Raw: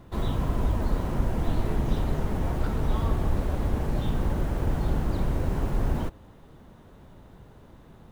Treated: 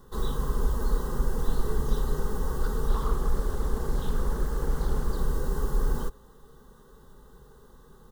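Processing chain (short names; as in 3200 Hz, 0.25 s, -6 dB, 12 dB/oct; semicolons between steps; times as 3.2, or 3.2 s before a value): high shelf 4300 Hz +7 dB; fixed phaser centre 470 Hz, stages 8; comb 2.6 ms, depth 52%; 2.89–5.17 Doppler distortion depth 0.51 ms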